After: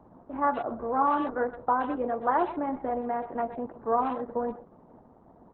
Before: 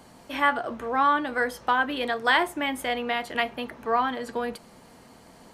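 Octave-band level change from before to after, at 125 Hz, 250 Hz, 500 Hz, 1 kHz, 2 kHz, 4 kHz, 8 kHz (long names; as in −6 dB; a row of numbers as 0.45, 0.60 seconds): −0.5 dB, 0.0 dB, 0.0 dB, −2.0 dB, −14.5 dB, below −20 dB, below −35 dB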